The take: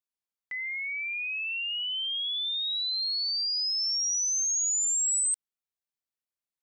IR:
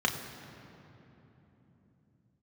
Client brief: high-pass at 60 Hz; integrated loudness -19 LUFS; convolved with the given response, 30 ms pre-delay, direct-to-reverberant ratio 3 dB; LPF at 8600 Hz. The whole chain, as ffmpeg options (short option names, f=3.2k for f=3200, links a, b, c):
-filter_complex "[0:a]highpass=60,lowpass=8.6k,asplit=2[a][b];[1:a]atrim=start_sample=2205,adelay=30[c];[b][c]afir=irnorm=-1:irlink=0,volume=-13.5dB[d];[a][d]amix=inputs=2:normalize=0,volume=7dB"